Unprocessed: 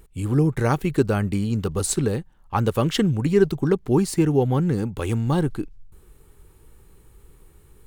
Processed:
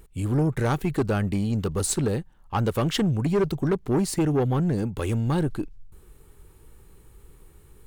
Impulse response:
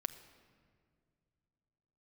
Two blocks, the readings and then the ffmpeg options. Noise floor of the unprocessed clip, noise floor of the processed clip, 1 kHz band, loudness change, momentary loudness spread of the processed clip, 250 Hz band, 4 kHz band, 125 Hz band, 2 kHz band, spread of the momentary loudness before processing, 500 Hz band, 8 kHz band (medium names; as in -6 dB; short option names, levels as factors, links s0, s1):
-53 dBFS, -53 dBFS, -2.5 dB, -3.0 dB, 4 LU, -3.0 dB, -1.5 dB, -2.5 dB, -2.5 dB, 6 LU, -4.0 dB, -1.5 dB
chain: -af "asoftclip=type=tanh:threshold=0.141"